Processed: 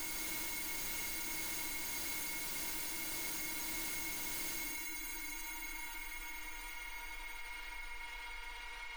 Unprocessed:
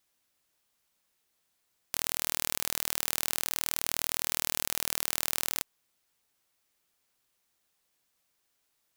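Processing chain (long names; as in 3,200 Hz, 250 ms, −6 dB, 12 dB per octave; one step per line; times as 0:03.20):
parametric band 360 Hz +6 dB 0.35 octaves
slack as between gear wheels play −30.5 dBFS
tuned comb filter 310 Hz, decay 0.37 s, harmonics odd, mix 90%
on a send: delay with a band-pass on its return 213 ms, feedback 83%, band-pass 1,500 Hz, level −9.5 dB
on the sum: extreme stretch with random phases 23×, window 0.05 s, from 0:05.42
envelope flattener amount 50%
level +6.5 dB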